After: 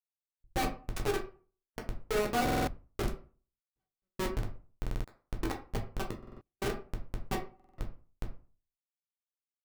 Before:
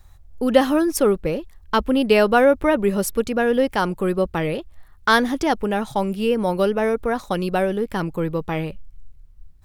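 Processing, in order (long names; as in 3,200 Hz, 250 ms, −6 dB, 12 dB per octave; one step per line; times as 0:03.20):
fade-out on the ending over 2.09 s
parametric band 190 Hz +7 dB 0.46 octaves
mains-hum notches 50/100/150/200/250/300/350/400 Hz
comb filter 6.7 ms, depth 42%
mains hum 60 Hz, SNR 18 dB
tuned comb filter 380 Hz, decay 0.2 s, harmonics all, mix 100%
comparator with hysteresis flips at −31.5 dBFS
gate pattern "x.x.xx..xxx" 68 BPM −60 dB
convolution reverb RT60 0.40 s, pre-delay 8 ms, DRR 1 dB
buffer that repeats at 0:02.44/0:04.81/0:06.18/0:07.55, samples 2,048, times 4
level +4.5 dB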